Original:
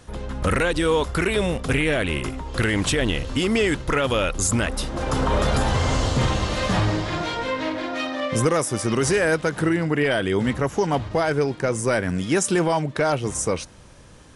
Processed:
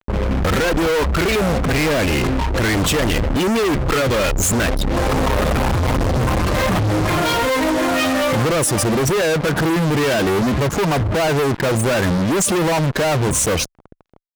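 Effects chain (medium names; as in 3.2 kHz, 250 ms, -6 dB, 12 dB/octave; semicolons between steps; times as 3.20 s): spectral gate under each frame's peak -15 dB strong; fuzz box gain 41 dB, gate -41 dBFS; Chebyshev shaper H 3 -15 dB, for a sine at -9 dBFS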